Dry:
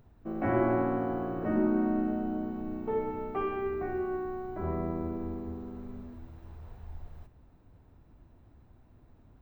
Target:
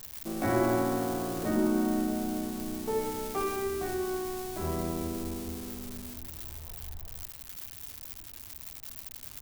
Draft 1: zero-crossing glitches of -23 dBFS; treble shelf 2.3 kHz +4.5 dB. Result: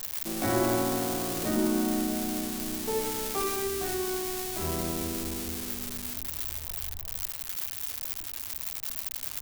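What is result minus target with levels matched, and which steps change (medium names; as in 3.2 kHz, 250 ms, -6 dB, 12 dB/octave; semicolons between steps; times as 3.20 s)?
zero-crossing glitches: distortion +8 dB
change: zero-crossing glitches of -31.5 dBFS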